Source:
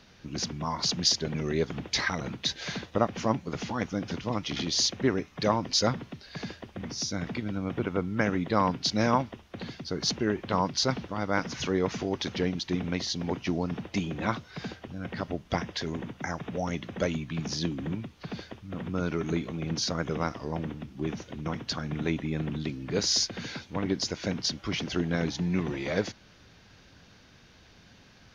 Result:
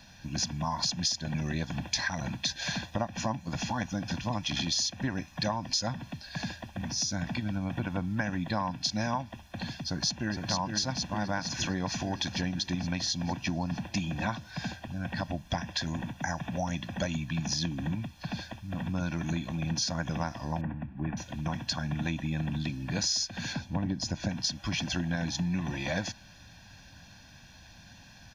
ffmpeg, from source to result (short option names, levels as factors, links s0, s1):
-filter_complex "[0:a]asplit=2[s0][s1];[s1]afade=t=in:st=9.83:d=0.01,afade=t=out:st=10.46:d=0.01,aecho=0:1:460|920|1380|1840|2300|2760|3220|3680|4140|4600:0.630957|0.410122|0.266579|0.173277|0.11263|0.0732094|0.0475861|0.030931|0.0201051|0.0130683[s2];[s0][s2]amix=inputs=2:normalize=0,asettb=1/sr,asplit=3[s3][s4][s5];[s3]atrim=end=20.614[s6];[s4]atrim=start=20.61:end=21.17,asetpts=PTS-STARTPTS,afade=t=in:d=0.004:c=qsin,afade=t=out:st=0.556:d=0.004:c=qsin,lowpass=f=2100:w=0.5412,lowpass=f=2100:w=1.3066[s7];[s5]atrim=start=21.166[s8];[s6][s7]acrossfade=d=0.004:c1=hsin:c2=qsin[s9];[s9][s8]acrossfade=d=0.004:c1=qsin:c2=hsin,asettb=1/sr,asplit=3[s10][s11][s12];[s10]atrim=end=23.534[s13];[s11]atrim=start=23.53:end=24.29,asetpts=PTS-STARTPTS,afade=t=in:d=0.004:c=qsin,afade=t=out:st=0.756:d=0.004:c=qsin,tiltshelf=f=800:g=5.5[s14];[s12]atrim=start=24.286[s15];[s13][s14]acrossfade=d=0.004:c1=hsin:c2=qsin[s16];[s16][s15]acrossfade=d=0.004:c1=qsin:c2=hsin,highshelf=f=6600:g=9,aecho=1:1:1.2:0.92,acompressor=threshold=0.0501:ratio=6,volume=0.891"